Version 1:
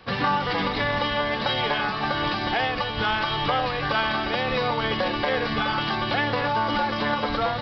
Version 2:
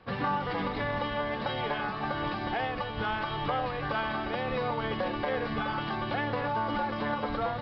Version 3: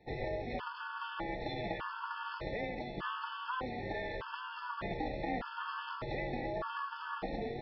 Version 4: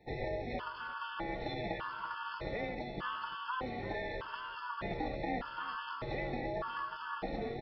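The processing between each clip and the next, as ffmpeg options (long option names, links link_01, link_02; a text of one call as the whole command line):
ffmpeg -i in.wav -af "lowpass=frequency=1500:poles=1,volume=-5dB" out.wav
ffmpeg -i in.wav -af "aeval=exprs='val(0)*sin(2*PI*250*n/s)':channel_layout=same,afftfilt=real='re*gt(sin(2*PI*0.83*pts/sr)*(1-2*mod(floor(b*sr/1024/870),2)),0)':imag='im*gt(sin(2*PI*0.83*pts/sr)*(1-2*mod(floor(b*sr/1024/870),2)),0)':win_size=1024:overlap=0.75,volume=-2dB" out.wav
ffmpeg -i in.wav -af "aecho=1:1:343|686:0.0891|0.0187" out.wav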